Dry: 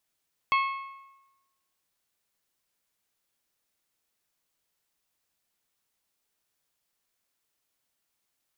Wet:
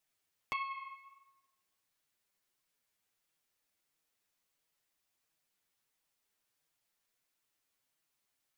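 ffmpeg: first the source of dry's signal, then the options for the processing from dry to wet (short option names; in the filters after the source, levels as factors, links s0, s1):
-f lavfi -i "aevalsrc='0.1*pow(10,-3*t/1.04)*sin(2*PI*1090*t)+0.0562*pow(10,-3*t/0.845)*sin(2*PI*2180*t)+0.0316*pow(10,-3*t/0.8)*sin(2*PI*2616*t)+0.0178*pow(10,-3*t/0.748)*sin(2*PI*3270*t)+0.01*pow(10,-3*t/0.686)*sin(2*PI*4360*t)':d=1.55:s=44100"
-af "equalizer=f=2100:w=1.5:g=2,acompressor=threshold=0.0112:ratio=2,flanger=delay=6.2:depth=4.4:regen=14:speed=1.5:shape=sinusoidal"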